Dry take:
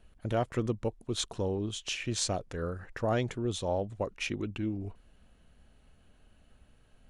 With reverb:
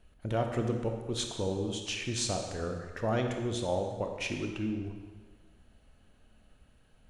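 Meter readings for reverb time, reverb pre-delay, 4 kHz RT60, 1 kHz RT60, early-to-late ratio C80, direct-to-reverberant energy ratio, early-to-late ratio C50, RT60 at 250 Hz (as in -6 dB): 1.4 s, 23 ms, 1.3 s, 1.4 s, 6.5 dB, 3.5 dB, 5.0 dB, 1.4 s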